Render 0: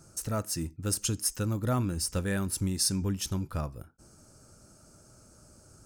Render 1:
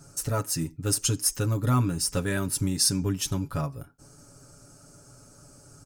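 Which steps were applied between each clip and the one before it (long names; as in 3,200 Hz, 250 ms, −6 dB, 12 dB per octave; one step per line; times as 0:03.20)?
comb filter 7.1 ms, depth 77%
level +2.5 dB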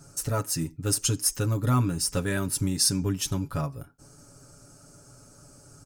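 no processing that can be heard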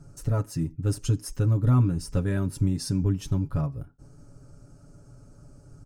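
spectral tilt −3 dB per octave
level −5 dB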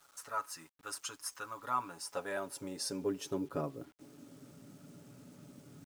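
high-pass filter sweep 1,100 Hz → 210 Hz, 0:01.48–0:04.62
bit reduction 10 bits
level −3 dB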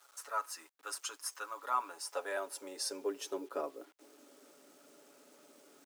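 high-pass filter 370 Hz 24 dB per octave
level +1 dB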